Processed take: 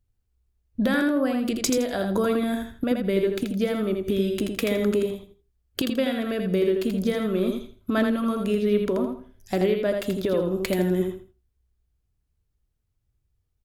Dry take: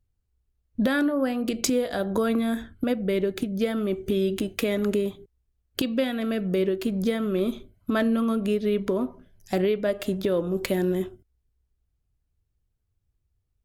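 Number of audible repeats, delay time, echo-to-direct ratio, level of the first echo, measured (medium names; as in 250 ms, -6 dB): 3, 82 ms, -5.0 dB, -5.0 dB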